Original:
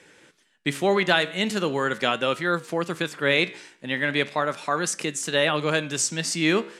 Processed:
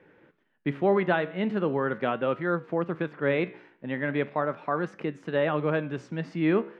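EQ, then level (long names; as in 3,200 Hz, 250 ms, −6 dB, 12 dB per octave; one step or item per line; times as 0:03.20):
high-frequency loss of the air 280 metres
parametric band 4,900 Hz −14.5 dB 2.1 octaves
high-shelf EQ 8,300 Hz −8.5 dB
0.0 dB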